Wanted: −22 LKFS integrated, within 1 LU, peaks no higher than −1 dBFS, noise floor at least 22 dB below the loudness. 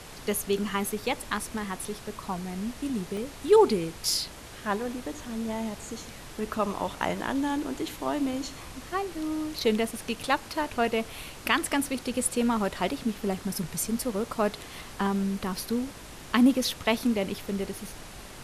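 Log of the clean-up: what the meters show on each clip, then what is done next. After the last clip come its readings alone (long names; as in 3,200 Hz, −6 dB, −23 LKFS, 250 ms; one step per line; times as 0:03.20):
number of dropouts 2; longest dropout 1.4 ms; background noise floor −44 dBFS; target noise floor −51 dBFS; integrated loudness −29.0 LKFS; sample peak −9.0 dBFS; target loudness −22.0 LKFS
→ repair the gap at 0:03.17/0:09.96, 1.4 ms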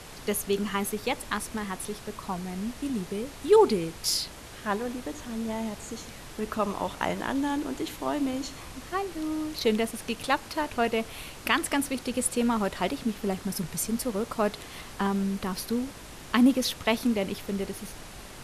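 number of dropouts 0; background noise floor −44 dBFS; target noise floor −51 dBFS
→ noise reduction from a noise print 7 dB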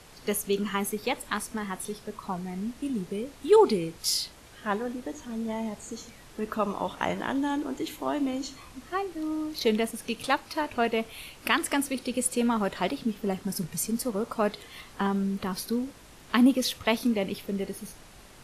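background noise floor −51 dBFS; integrated loudness −29.0 LKFS; sample peak −9.0 dBFS; target loudness −22.0 LKFS
→ level +7 dB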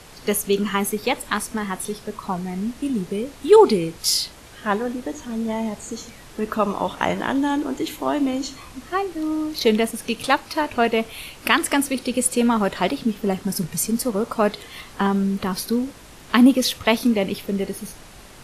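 integrated loudness −22.0 LKFS; sample peak −2.0 dBFS; background noise floor −44 dBFS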